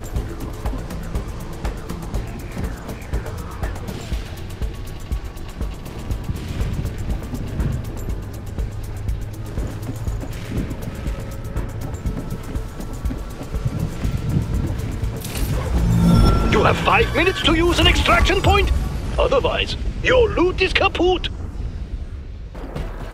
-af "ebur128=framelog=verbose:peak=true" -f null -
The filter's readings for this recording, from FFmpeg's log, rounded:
Integrated loudness:
  I:         -21.8 LUFS
  Threshold: -32.0 LUFS
Loudness range:
  LRA:        12.9 LU
  Threshold: -41.7 LUFS
  LRA low:   -29.3 LUFS
  LRA high:  -16.4 LUFS
True peak:
  Peak:       -1.4 dBFS